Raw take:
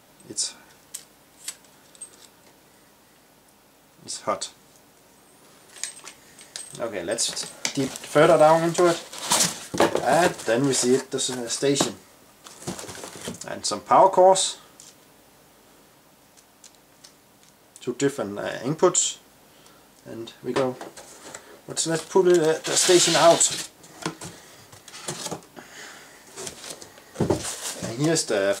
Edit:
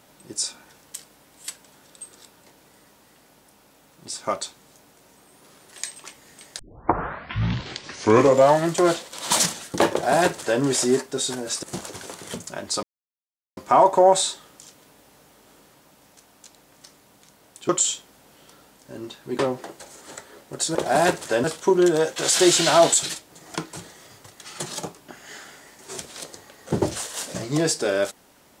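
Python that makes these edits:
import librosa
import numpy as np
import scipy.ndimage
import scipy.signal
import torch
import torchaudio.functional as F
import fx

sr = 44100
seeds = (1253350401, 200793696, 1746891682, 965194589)

y = fx.edit(x, sr, fx.tape_start(start_s=6.59, length_s=2.08),
    fx.duplicate(start_s=9.92, length_s=0.69, to_s=21.92),
    fx.cut(start_s=11.63, length_s=0.94),
    fx.insert_silence(at_s=13.77, length_s=0.74),
    fx.cut(start_s=17.89, length_s=0.97), tone=tone)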